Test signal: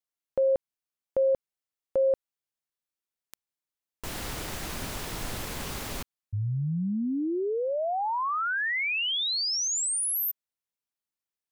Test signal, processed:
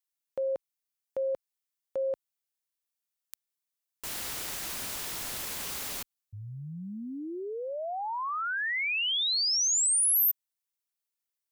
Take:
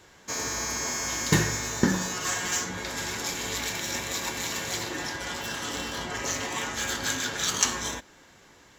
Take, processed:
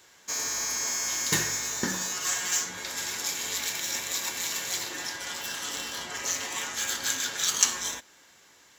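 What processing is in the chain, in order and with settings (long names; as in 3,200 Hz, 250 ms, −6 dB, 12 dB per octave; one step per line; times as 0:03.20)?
spectral tilt +2.5 dB per octave
level −4.5 dB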